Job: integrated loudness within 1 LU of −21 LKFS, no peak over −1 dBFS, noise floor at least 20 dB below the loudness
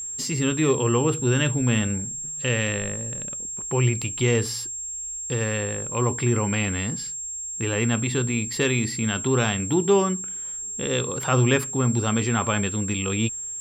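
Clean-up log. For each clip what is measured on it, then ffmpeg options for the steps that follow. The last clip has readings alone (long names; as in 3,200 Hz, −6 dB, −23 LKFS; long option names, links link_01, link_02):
interfering tone 7,500 Hz; level of the tone −30 dBFS; integrated loudness −24.0 LKFS; sample peak −8.0 dBFS; target loudness −21.0 LKFS
→ -af "bandreject=frequency=7500:width=30"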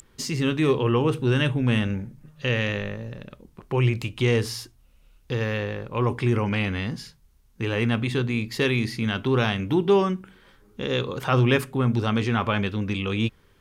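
interfering tone none found; integrated loudness −24.5 LKFS; sample peak −9.0 dBFS; target loudness −21.0 LKFS
→ -af "volume=3.5dB"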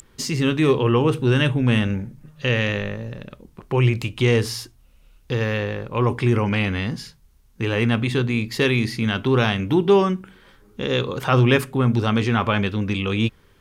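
integrated loudness −21.0 LKFS; sample peak −5.5 dBFS; background noise floor −55 dBFS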